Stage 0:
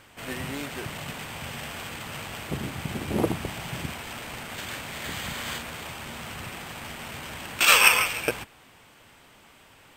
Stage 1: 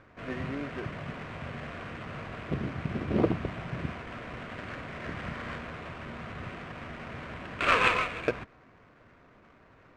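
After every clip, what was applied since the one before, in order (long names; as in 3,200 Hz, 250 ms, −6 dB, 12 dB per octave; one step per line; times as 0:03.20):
running median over 15 samples
low-pass filter 3,200 Hz 12 dB per octave
notch filter 850 Hz, Q 5.1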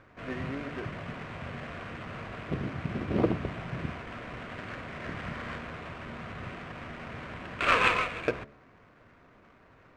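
hum removal 72.03 Hz, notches 9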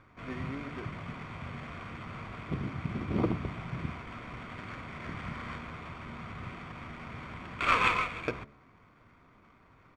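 comb filter 0.9 ms, depth 39%
level −3 dB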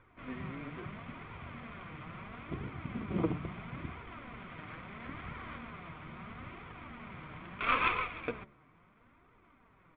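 Butterworth low-pass 3,600 Hz 48 dB per octave
flanger 0.75 Hz, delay 2 ms, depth 4.8 ms, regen +40%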